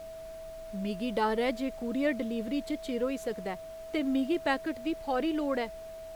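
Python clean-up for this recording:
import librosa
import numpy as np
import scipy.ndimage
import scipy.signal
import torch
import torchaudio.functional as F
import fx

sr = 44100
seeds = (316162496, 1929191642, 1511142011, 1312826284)

y = fx.notch(x, sr, hz=650.0, q=30.0)
y = fx.noise_reduce(y, sr, print_start_s=0.06, print_end_s=0.56, reduce_db=30.0)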